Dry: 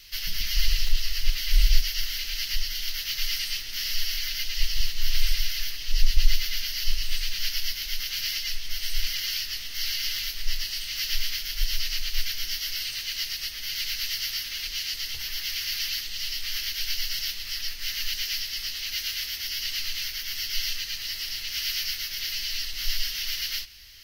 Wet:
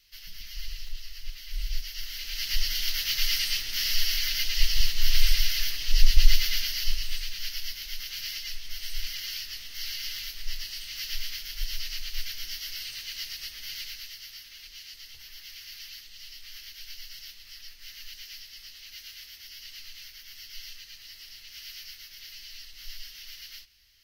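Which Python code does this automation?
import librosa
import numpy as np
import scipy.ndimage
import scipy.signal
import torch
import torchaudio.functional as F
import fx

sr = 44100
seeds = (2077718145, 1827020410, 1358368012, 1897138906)

y = fx.gain(x, sr, db=fx.line((1.52, -14.0), (2.18, -6.0), (2.65, 2.0), (6.52, 2.0), (7.33, -6.0), (13.72, -6.0), (14.17, -14.0)))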